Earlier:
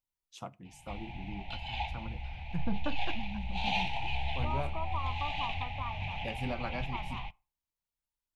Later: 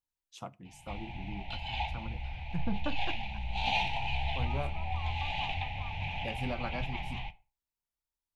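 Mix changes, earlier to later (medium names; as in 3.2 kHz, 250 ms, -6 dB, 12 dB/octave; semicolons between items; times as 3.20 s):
second voice -11.0 dB; background: send +11.5 dB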